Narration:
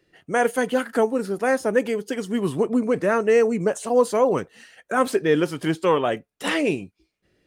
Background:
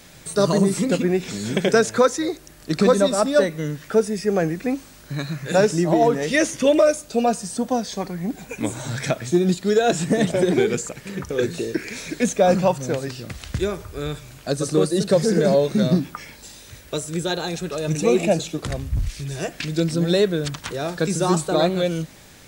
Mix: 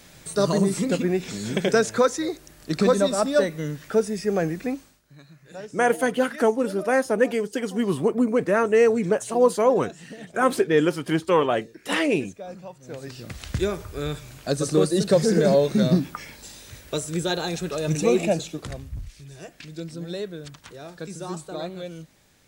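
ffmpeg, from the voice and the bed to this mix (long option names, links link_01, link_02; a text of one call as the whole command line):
ffmpeg -i stem1.wav -i stem2.wav -filter_complex "[0:a]adelay=5450,volume=0dB[link_01];[1:a]volume=17.5dB,afade=type=out:start_time=4.64:duration=0.37:silence=0.11885,afade=type=in:start_time=12.81:duration=0.66:silence=0.0944061,afade=type=out:start_time=17.95:duration=1.12:silence=0.237137[link_02];[link_01][link_02]amix=inputs=2:normalize=0" out.wav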